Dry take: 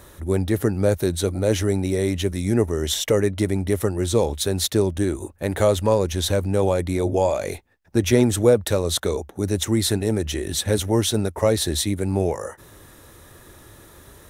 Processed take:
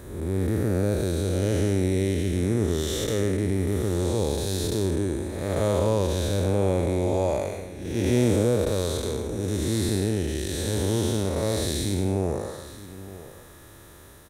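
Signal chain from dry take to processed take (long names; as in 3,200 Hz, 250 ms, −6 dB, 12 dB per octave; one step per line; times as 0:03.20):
spectrum smeared in time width 324 ms
single-tap delay 918 ms −16 dB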